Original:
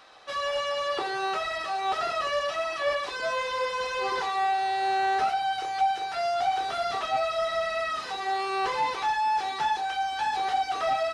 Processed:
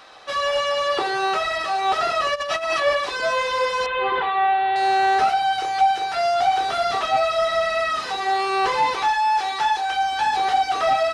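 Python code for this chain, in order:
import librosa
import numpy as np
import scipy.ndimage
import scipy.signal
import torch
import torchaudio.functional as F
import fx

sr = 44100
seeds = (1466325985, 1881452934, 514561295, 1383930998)

y = fx.over_compress(x, sr, threshold_db=-32.0, ratio=-0.5, at=(2.34, 2.79), fade=0.02)
y = fx.ellip_lowpass(y, sr, hz=3400.0, order=4, stop_db=60, at=(3.86, 4.76))
y = fx.peak_eq(y, sr, hz=160.0, db=-8.5, octaves=2.5, at=(9.08, 9.89))
y = y * 10.0 ** (7.0 / 20.0)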